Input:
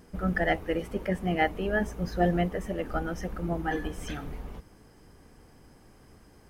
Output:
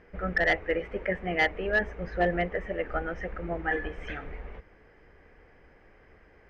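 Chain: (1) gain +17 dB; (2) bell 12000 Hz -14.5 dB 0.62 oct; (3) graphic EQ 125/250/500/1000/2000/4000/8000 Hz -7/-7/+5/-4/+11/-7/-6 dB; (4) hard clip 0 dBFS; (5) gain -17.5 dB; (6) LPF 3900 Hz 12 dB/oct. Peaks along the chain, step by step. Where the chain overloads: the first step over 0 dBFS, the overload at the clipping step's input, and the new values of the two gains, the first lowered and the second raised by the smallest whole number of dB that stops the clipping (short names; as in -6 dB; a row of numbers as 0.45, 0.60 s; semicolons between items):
+5.0, +5.0, +8.0, 0.0, -17.5, -17.0 dBFS; step 1, 8.0 dB; step 1 +9 dB, step 5 -9.5 dB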